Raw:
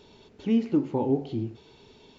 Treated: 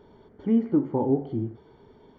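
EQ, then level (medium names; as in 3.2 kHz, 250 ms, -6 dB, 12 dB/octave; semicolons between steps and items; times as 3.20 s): Savitzky-Golay filter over 41 samples; +1.5 dB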